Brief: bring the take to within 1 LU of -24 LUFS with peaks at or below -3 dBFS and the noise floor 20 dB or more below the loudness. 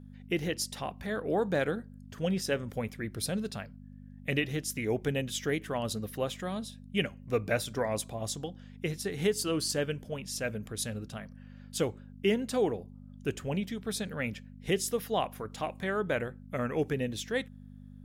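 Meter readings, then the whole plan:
hum 50 Hz; harmonics up to 250 Hz; hum level -47 dBFS; loudness -33.0 LUFS; peak -15.5 dBFS; loudness target -24.0 LUFS
-> de-hum 50 Hz, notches 5; gain +9 dB

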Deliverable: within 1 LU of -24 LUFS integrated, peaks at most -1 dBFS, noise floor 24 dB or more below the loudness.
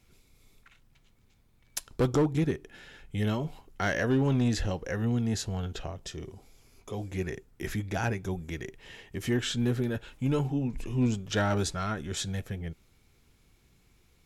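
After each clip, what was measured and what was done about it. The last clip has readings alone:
clipped 0.6%; flat tops at -19.5 dBFS; loudness -31.0 LUFS; peak -19.5 dBFS; loudness target -24.0 LUFS
-> clip repair -19.5 dBFS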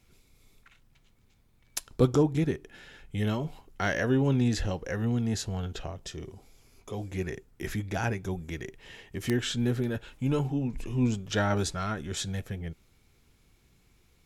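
clipped 0.0%; loudness -30.5 LUFS; peak -10.5 dBFS; loudness target -24.0 LUFS
-> gain +6.5 dB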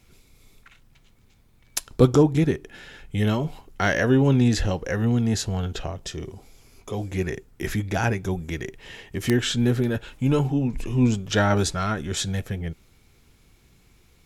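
loudness -24.0 LUFS; peak -4.0 dBFS; noise floor -58 dBFS

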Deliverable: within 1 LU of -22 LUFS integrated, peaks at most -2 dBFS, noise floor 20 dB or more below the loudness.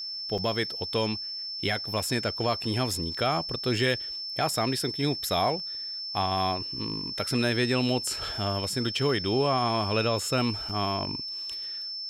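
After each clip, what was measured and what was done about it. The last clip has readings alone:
dropouts 2; longest dropout 5.6 ms; steady tone 5300 Hz; tone level -33 dBFS; loudness -28.0 LUFS; peak -15.0 dBFS; loudness target -22.0 LUFS
-> interpolate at 0.38/10.69, 5.6 ms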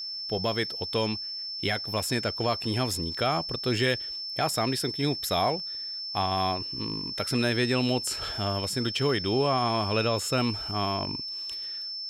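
dropouts 0; steady tone 5300 Hz; tone level -33 dBFS
-> notch 5300 Hz, Q 30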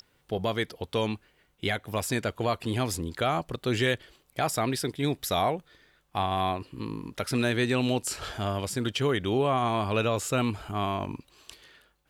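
steady tone none; loudness -29.0 LUFS; peak -16.0 dBFS; loudness target -22.0 LUFS
-> gain +7 dB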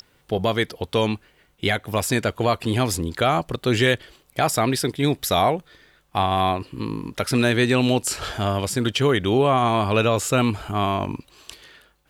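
loudness -22.0 LUFS; peak -9.0 dBFS; noise floor -61 dBFS

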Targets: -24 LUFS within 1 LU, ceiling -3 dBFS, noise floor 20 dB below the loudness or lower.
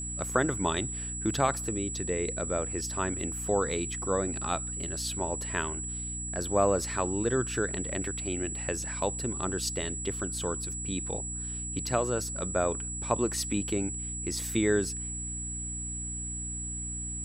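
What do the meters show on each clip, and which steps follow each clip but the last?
hum 60 Hz; harmonics up to 300 Hz; hum level -37 dBFS; steady tone 7800 Hz; tone level -35 dBFS; loudness -30.5 LUFS; peak -10.0 dBFS; loudness target -24.0 LUFS
-> notches 60/120/180/240/300 Hz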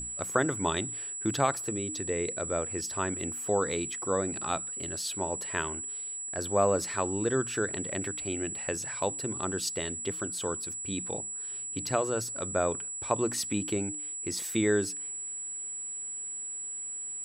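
hum none; steady tone 7800 Hz; tone level -35 dBFS
-> notch 7800 Hz, Q 30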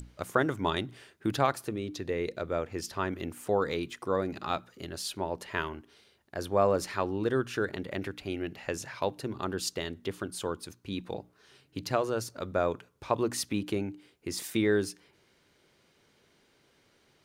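steady tone none; loudness -32.5 LUFS; peak -10.0 dBFS; loudness target -24.0 LUFS
-> gain +8.5 dB; limiter -3 dBFS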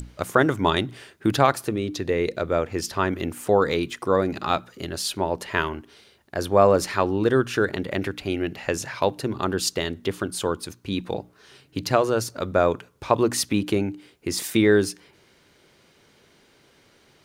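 loudness -24.0 LUFS; peak -3.0 dBFS; noise floor -59 dBFS

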